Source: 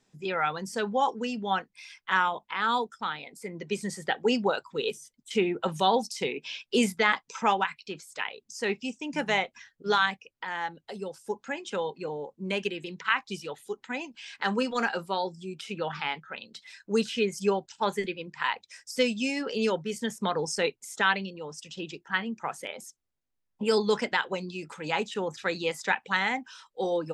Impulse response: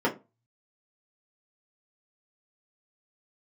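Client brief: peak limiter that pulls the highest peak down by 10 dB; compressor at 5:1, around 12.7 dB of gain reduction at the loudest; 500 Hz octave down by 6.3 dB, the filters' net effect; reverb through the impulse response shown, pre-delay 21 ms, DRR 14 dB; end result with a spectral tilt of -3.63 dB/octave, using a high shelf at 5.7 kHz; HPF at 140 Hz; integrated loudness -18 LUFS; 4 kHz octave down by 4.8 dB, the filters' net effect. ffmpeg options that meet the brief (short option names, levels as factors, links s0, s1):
-filter_complex "[0:a]highpass=140,equalizer=f=500:t=o:g=-7.5,equalizer=f=4000:t=o:g=-8,highshelf=f=5700:g=3.5,acompressor=threshold=0.0158:ratio=5,alimiter=level_in=2.11:limit=0.0631:level=0:latency=1,volume=0.473,asplit=2[s0][s1];[1:a]atrim=start_sample=2205,adelay=21[s2];[s1][s2]afir=irnorm=-1:irlink=0,volume=0.0447[s3];[s0][s3]amix=inputs=2:normalize=0,volume=15.8"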